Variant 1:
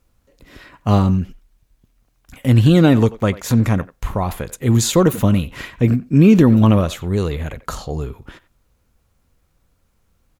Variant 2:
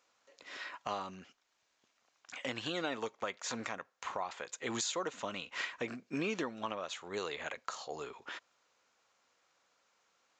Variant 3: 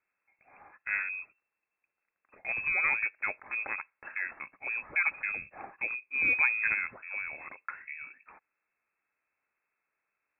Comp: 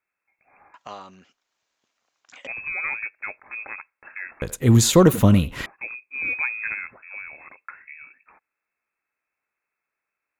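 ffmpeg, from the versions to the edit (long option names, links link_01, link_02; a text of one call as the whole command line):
ffmpeg -i take0.wav -i take1.wav -i take2.wav -filter_complex "[2:a]asplit=3[link_01][link_02][link_03];[link_01]atrim=end=0.742[link_04];[1:a]atrim=start=0.738:end=2.472[link_05];[link_02]atrim=start=2.468:end=4.422[link_06];[0:a]atrim=start=4.418:end=5.662[link_07];[link_03]atrim=start=5.658[link_08];[link_04][link_05]acrossfade=duration=0.004:curve1=hsin:curve2=hsin[link_09];[link_09][link_06]acrossfade=duration=0.004:curve1=hsin:curve2=hsin[link_10];[link_10][link_07]acrossfade=duration=0.004:curve1=hsin:curve2=hsin[link_11];[link_11][link_08]acrossfade=duration=0.004:curve1=hsin:curve2=hsin" out.wav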